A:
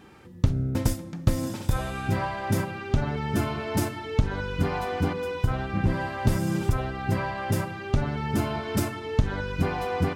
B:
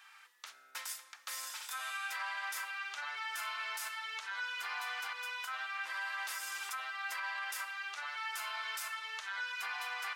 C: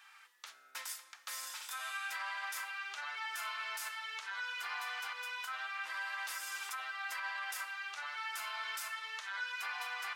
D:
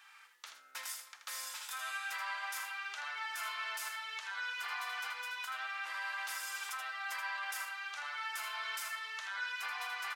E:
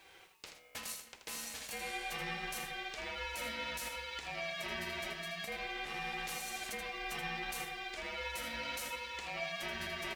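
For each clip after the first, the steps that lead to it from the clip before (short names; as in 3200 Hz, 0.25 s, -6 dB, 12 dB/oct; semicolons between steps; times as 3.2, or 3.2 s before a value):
HPF 1200 Hz 24 dB/oct; limiter -30.5 dBFS, peak gain reduction 10 dB
flange 0.31 Hz, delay 3.3 ms, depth 8.7 ms, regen +81%; gain +3.5 dB
echo 80 ms -8 dB
ring modulator 820 Hz; added noise blue -79 dBFS; gain +2.5 dB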